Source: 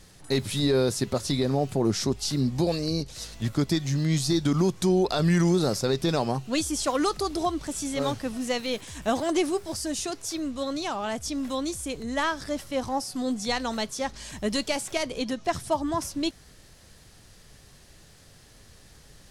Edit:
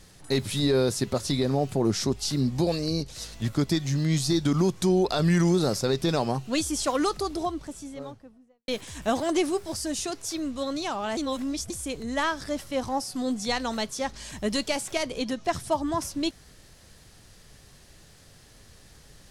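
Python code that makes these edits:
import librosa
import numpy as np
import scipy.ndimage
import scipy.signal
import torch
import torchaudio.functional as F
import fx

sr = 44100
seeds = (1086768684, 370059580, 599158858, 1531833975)

y = fx.studio_fade_out(x, sr, start_s=6.9, length_s=1.78)
y = fx.edit(y, sr, fx.reverse_span(start_s=11.17, length_s=0.53), tone=tone)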